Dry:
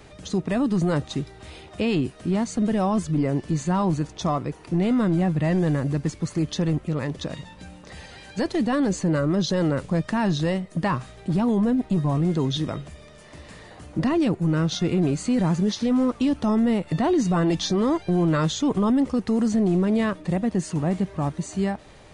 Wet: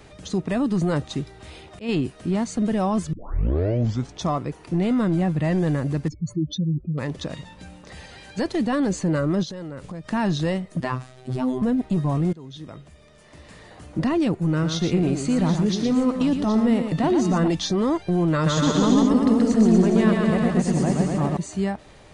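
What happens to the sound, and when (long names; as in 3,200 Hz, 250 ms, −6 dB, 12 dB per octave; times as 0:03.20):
0:01.12–0:01.89: volume swells 150 ms
0:03.13: tape start 1.05 s
0:06.08–0:06.98: expanding power law on the bin magnitudes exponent 2.8
0:09.43–0:10.11: downward compressor 10 to 1, threshold −31 dBFS
0:10.80–0:11.62: phases set to zero 128 Hz
0:12.33–0:13.88: fade in, from −21.5 dB
0:14.51–0:17.48: multi-tap delay 116/771 ms −7/−11.5 dB
0:18.33–0:21.37: bouncing-ball delay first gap 130 ms, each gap 0.85×, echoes 5, each echo −2 dB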